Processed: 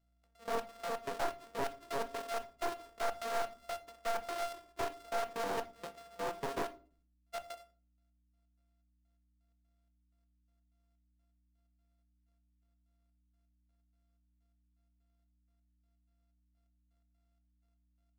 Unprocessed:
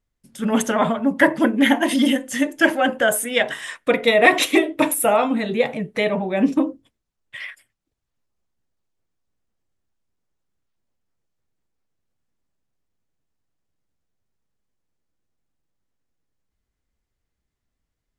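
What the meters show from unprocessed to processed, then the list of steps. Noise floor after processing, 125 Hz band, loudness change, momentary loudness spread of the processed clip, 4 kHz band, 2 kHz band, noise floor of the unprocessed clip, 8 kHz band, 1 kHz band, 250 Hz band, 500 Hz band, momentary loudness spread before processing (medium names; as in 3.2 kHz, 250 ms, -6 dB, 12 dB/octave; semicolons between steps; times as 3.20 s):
-75 dBFS, -21.0 dB, -21.0 dB, 9 LU, -21.0 dB, -24.5 dB, -80 dBFS, -22.0 dB, -14.5 dB, -31.0 dB, -18.5 dB, 9 LU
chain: sorted samples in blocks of 64 samples; high-pass 450 Hz 12 dB/octave; band-stop 830 Hz, Q 12; compression 6:1, threshold -26 dBFS, peak gain reduction 18 dB; trance gate "xx..x..x." 126 bpm -24 dB; overload inside the chain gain 28.5 dB; hum 60 Hz, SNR 32 dB; simulated room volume 320 m³, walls furnished, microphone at 0.71 m; careless resampling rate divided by 2×, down none, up hold; loudspeaker Doppler distortion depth 0.59 ms; trim -3.5 dB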